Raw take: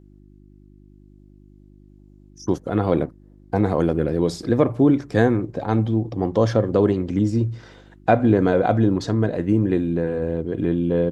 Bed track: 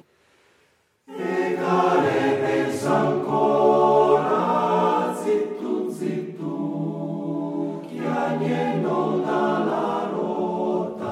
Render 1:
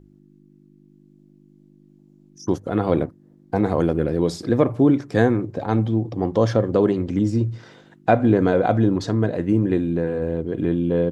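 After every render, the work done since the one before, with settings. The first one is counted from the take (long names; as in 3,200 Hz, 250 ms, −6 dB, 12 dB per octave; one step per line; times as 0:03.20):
hum removal 50 Hz, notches 2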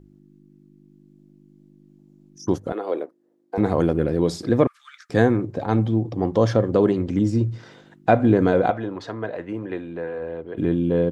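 0:02.72–0:03.58: four-pole ladder high-pass 330 Hz, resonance 35%
0:04.67–0:05.10: Chebyshev high-pass with heavy ripple 1,200 Hz, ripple 3 dB
0:08.70–0:10.57: three-way crossover with the lows and the highs turned down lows −15 dB, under 490 Hz, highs −14 dB, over 3,500 Hz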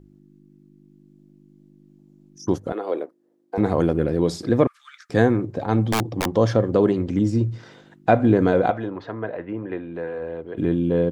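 0:05.85–0:06.30: wrap-around overflow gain 15 dB
0:08.90–0:09.95: low-pass filter 2,700 Hz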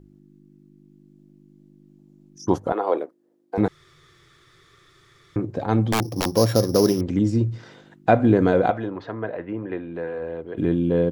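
0:02.50–0:02.98: parametric band 910 Hz +10.5 dB 1.1 octaves
0:03.68–0:05.36: fill with room tone
0:06.02–0:07.01: samples sorted by size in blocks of 8 samples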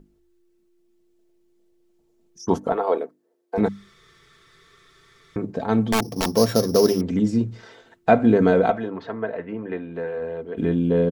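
mains-hum notches 50/100/150/200/250/300 Hz
comb filter 4.5 ms, depth 51%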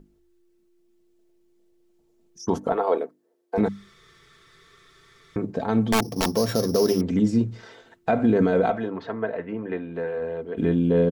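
brickwall limiter −11 dBFS, peak gain reduction 9 dB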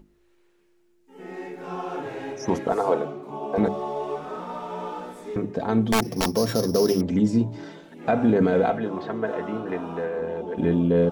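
mix in bed track −13 dB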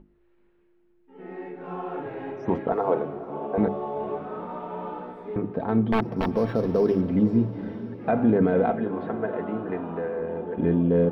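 high-frequency loss of the air 480 metres
feedback delay with all-pass diffusion 478 ms, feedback 50%, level −14.5 dB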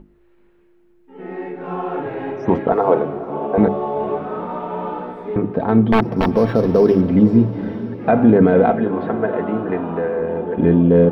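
level +8.5 dB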